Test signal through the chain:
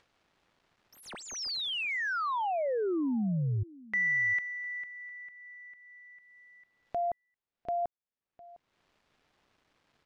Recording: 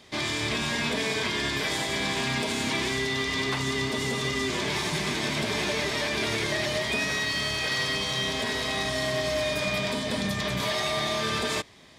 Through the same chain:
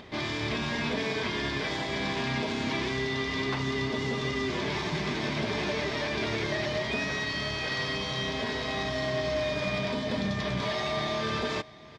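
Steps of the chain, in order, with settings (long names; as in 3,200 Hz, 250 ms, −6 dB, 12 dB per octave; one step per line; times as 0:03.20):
running median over 5 samples
dynamic equaliser 5,600 Hz, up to +7 dB, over −47 dBFS, Q 1.1
upward compression, threshold −37 dBFS
head-to-tape spacing loss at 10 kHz 21 dB
single-tap delay 706 ms −21 dB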